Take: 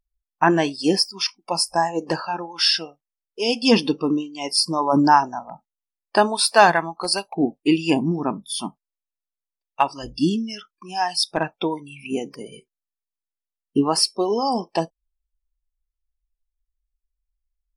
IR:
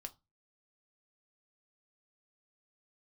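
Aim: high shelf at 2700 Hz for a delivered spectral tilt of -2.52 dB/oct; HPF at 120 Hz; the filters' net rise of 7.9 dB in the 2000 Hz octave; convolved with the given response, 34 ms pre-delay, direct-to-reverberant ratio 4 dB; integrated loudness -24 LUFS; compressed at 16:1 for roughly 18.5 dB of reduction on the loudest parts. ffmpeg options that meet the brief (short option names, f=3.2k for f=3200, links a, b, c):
-filter_complex "[0:a]highpass=120,equalizer=f=2k:t=o:g=7.5,highshelf=f=2.7k:g=8.5,acompressor=threshold=-23dB:ratio=16,asplit=2[a][b];[1:a]atrim=start_sample=2205,adelay=34[c];[b][c]afir=irnorm=-1:irlink=0,volume=0.5dB[d];[a][d]amix=inputs=2:normalize=0,volume=2.5dB"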